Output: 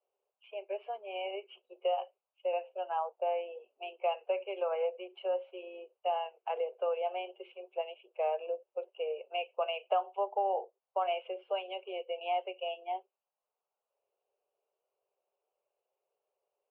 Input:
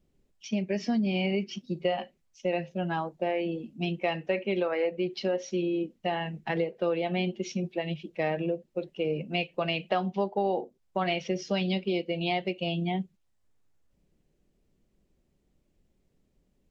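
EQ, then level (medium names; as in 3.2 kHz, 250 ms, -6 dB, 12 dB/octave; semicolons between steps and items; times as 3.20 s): steep high-pass 360 Hz 72 dB/octave; Chebyshev low-pass 2.9 kHz, order 6; static phaser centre 780 Hz, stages 4; 0.0 dB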